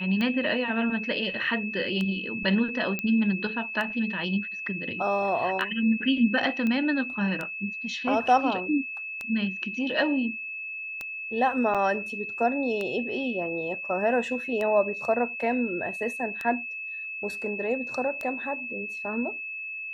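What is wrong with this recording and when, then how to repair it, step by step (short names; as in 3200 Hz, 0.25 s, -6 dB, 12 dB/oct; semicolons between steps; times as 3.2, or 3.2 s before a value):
tick 33 1/3 rpm -18 dBFS
tone 2600 Hz -33 dBFS
2.99 pop -15 dBFS
6.67 pop -18 dBFS
11.74–11.75 gap 6.7 ms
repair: de-click; notch 2600 Hz, Q 30; interpolate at 11.74, 6.7 ms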